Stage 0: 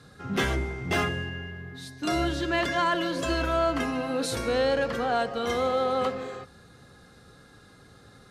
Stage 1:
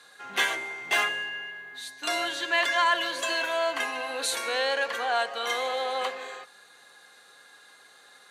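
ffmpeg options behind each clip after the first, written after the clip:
-af "highpass=950,equalizer=f=5.2k:w=7.9:g=-10,bandreject=f=1.3k:w=6.9,volume=5.5dB"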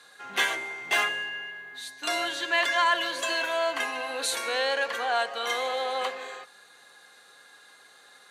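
-af anull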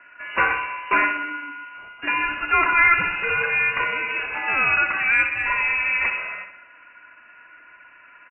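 -af "aecho=1:1:64|128|192|256|320|384|448:0.335|0.188|0.105|0.0588|0.0329|0.0184|0.0103,lowpass=f=2.6k:t=q:w=0.5098,lowpass=f=2.6k:t=q:w=0.6013,lowpass=f=2.6k:t=q:w=0.9,lowpass=f=2.6k:t=q:w=2.563,afreqshift=-3100,volume=7dB"

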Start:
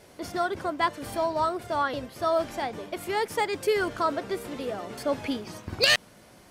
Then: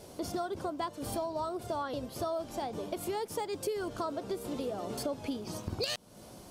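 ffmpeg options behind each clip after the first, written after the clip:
-af "equalizer=f=1.9k:t=o:w=1.1:g=-12,acompressor=threshold=-37dB:ratio=5,volume=4dB"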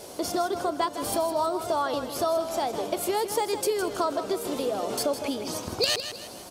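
-af "bass=f=250:g=-11,treble=f=4k:g=2,aecho=1:1:159|318|477|636:0.316|0.126|0.0506|0.0202,volume=9dB"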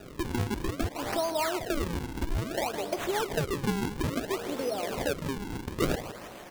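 -af "acrusher=samples=41:mix=1:aa=0.000001:lfo=1:lforange=65.6:lforate=0.59,volume=-3dB"

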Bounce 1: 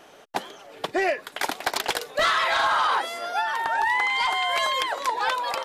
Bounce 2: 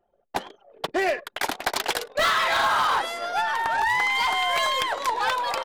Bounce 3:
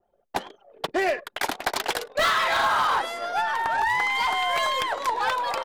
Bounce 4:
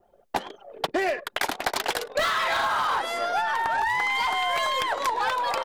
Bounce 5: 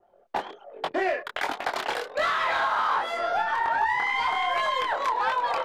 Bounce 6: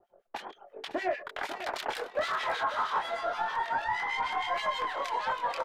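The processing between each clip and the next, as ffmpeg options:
-af "aeval=exprs='0.158*(cos(1*acos(clip(val(0)/0.158,-1,1)))-cos(1*PI/2))+0.0158*(cos(2*acos(clip(val(0)/0.158,-1,1)))-cos(2*PI/2))+0.01*(cos(4*acos(clip(val(0)/0.158,-1,1)))-cos(4*PI/2))+0.0141*(cos(5*acos(clip(val(0)/0.158,-1,1)))-cos(5*PI/2))+0.00708*(cos(7*acos(clip(val(0)/0.158,-1,1)))-cos(7*PI/2))':c=same,aecho=1:1:105:0.106,anlmdn=1.58"
-af "adynamicequalizer=threshold=0.0158:dfrequency=2000:dqfactor=0.7:tfrequency=2000:tqfactor=0.7:attack=5:release=100:ratio=0.375:range=1.5:mode=cutabove:tftype=highshelf"
-af "acompressor=threshold=-33dB:ratio=4,volume=8.5dB"
-filter_complex "[0:a]asplit=2[a][b];[b]highpass=f=720:p=1,volume=11dB,asoftclip=type=tanh:threshold=-8.5dB[c];[a][c]amix=inputs=2:normalize=0,lowpass=f=1.6k:p=1,volume=-6dB,flanger=delay=20:depth=7.8:speed=1.3"
-filter_complex "[0:a]asoftclip=type=tanh:threshold=-18.5dB,acrossover=split=1800[a][b];[a]aeval=exprs='val(0)*(1-1/2+1/2*cos(2*PI*6.4*n/s))':c=same[c];[b]aeval=exprs='val(0)*(1-1/2-1/2*cos(2*PI*6.4*n/s))':c=same[d];[c][d]amix=inputs=2:normalize=0,aecho=1:1:547|1094|1641|2188:0.266|0.0984|0.0364|0.0135"

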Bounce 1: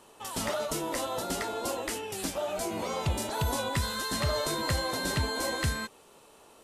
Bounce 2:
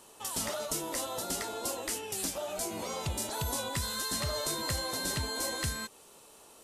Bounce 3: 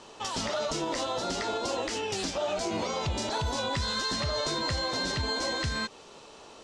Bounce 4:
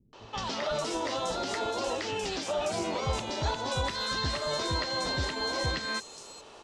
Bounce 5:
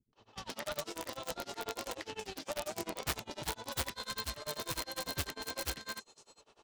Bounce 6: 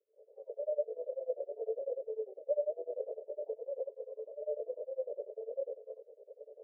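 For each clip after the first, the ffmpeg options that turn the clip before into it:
-filter_complex "[0:a]asplit=2[a][b];[b]acompressor=threshold=-37dB:ratio=6,volume=0dB[c];[a][c]amix=inputs=2:normalize=0,bass=f=250:g=0,treble=f=4k:g=8,volume=-8dB"
-af "lowpass=f=5.8k:w=0.5412,lowpass=f=5.8k:w=1.3066,alimiter=level_in=6dB:limit=-24dB:level=0:latency=1:release=89,volume=-6dB,volume=8.5dB"
-filter_complex "[0:a]acrossover=split=210|5900[a][b][c];[b]adelay=130[d];[c]adelay=540[e];[a][d][e]amix=inputs=3:normalize=0"
-af "aeval=exprs='0.133*(cos(1*acos(clip(val(0)/0.133,-1,1)))-cos(1*PI/2))+0.0376*(cos(3*acos(clip(val(0)/0.133,-1,1)))-cos(3*PI/2))':c=same,aeval=exprs='(mod(26.6*val(0)+1,2)-1)/26.6':c=same,tremolo=f=10:d=0.96,volume=5.5dB"
-af "areverse,acompressor=mode=upward:threshold=-44dB:ratio=2.5,areverse,asuperpass=centerf=510:order=8:qfactor=2.7,volume=10dB"

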